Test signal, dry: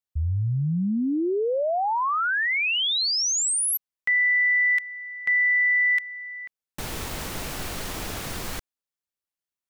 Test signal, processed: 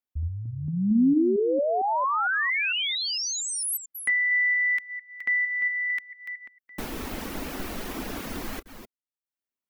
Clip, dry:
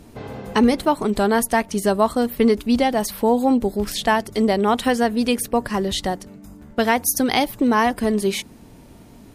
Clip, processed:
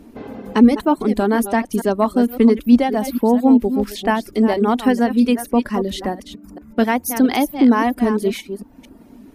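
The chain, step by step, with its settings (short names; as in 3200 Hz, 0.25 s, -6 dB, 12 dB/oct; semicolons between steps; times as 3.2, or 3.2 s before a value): reverse delay 0.227 s, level -9 dB; reverb removal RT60 0.52 s; graphic EQ 125/250/4000/8000 Hz -10/+10/-3/-6 dB; gain -1 dB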